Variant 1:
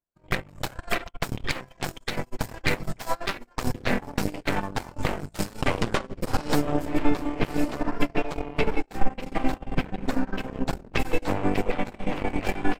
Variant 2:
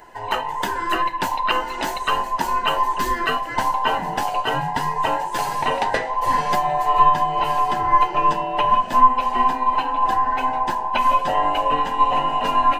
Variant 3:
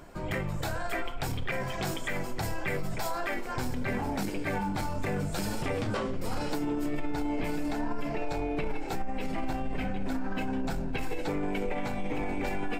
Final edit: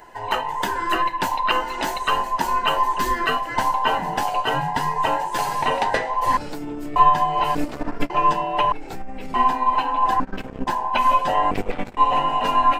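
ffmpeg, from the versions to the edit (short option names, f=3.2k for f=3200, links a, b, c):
-filter_complex "[2:a]asplit=2[a][b];[0:a]asplit=3[c][d][e];[1:a]asplit=6[f][g][h][i][j][k];[f]atrim=end=6.372[l];[a]atrim=start=6.368:end=6.962[m];[g]atrim=start=6.958:end=7.552[n];[c]atrim=start=7.548:end=8.102[o];[h]atrim=start=8.098:end=8.722[p];[b]atrim=start=8.718:end=9.342[q];[i]atrim=start=9.338:end=10.202[r];[d]atrim=start=10.198:end=10.672[s];[j]atrim=start=10.668:end=11.512[t];[e]atrim=start=11.508:end=11.972[u];[k]atrim=start=11.968[v];[l][m]acrossfade=d=0.004:c1=hsin:c2=hsin[w];[w][n]acrossfade=d=0.004:c1=hsin:c2=hsin[x];[x][o]acrossfade=d=0.004:c1=hsin:c2=hsin[y];[y][p]acrossfade=d=0.004:c1=hsin:c2=hsin[z];[z][q]acrossfade=d=0.004:c1=hsin:c2=hsin[aa];[aa][r]acrossfade=d=0.004:c1=hsin:c2=hsin[ab];[ab][s]acrossfade=d=0.004:c1=hsin:c2=hsin[ac];[ac][t]acrossfade=d=0.004:c1=hsin:c2=hsin[ad];[ad][u]acrossfade=d=0.004:c1=hsin:c2=hsin[ae];[ae][v]acrossfade=d=0.004:c1=hsin:c2=hsin"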